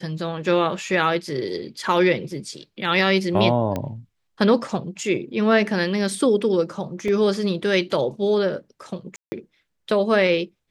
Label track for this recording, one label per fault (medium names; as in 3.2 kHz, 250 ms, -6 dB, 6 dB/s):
3.760000	3.760000	pop -13 dBFS
7.080000	7.080000	dropout 2.8 ms
9.160000	9.320000	dropout 160 ms